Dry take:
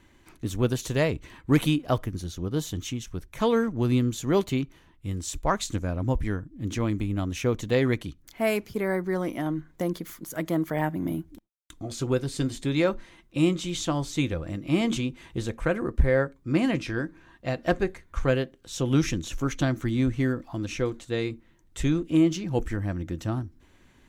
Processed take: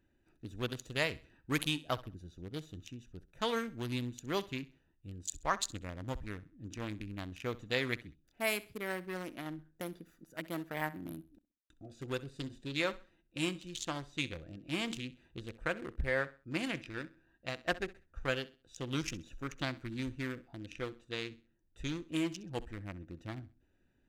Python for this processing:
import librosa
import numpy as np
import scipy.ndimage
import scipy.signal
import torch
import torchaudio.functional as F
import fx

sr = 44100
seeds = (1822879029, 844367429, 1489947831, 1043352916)

p1 = fx.wiener(x, sr, points=41)
p2 = fx.tilt_shelf(p1, sr, db=-9.0, hz=970.0)
p3 = p2 + fx.echo_feedback(p2, sr, ms=65, feedback_pct=30, wet_db=-18.5, dry=0)
y = F.gain(torch.from_numpy(p3), -6.5).numpy()